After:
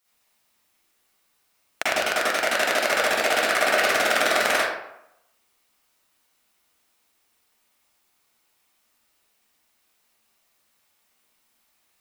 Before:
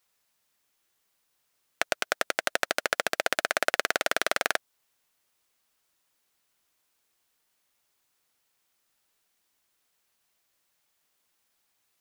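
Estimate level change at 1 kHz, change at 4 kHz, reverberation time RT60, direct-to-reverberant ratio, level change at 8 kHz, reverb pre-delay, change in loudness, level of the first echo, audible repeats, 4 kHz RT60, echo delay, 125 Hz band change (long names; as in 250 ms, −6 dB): +7.5 dB, +6.5 dB, 0.80 s, −9.5 dB, +5.5 dB, 40 ms, +6.5 dB, no echo audible, no echo audible, 0.50 s, no echo audible, +5.5 dB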